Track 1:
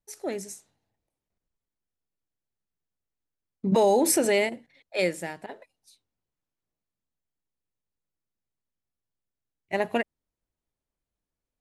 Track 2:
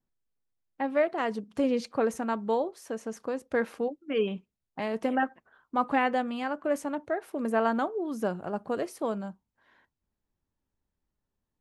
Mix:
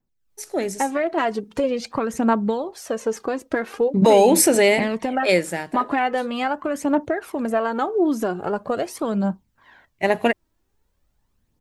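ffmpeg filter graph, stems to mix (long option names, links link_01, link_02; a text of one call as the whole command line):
ffmpeg -i stem1.wav -i stem2.wav -filter_complex "[0:a]adelay=300,volume=-4dB[link_01];[1:a]equalizer=frequency=10000:width=7.3:gain=-8,acompressor=threshold=-30dB:ratio=6,aphaser=in_gain=1:out_gain=1:delay=3.2:decay=0.52:speed=0.43:type=triangular,volume=-0.5dB[link_02];[link_01][link_02]amix=inputs=2:normalize=0,dynaudnorm=framelen=180:gausssize=3:maxgain=11.5dB" out.wav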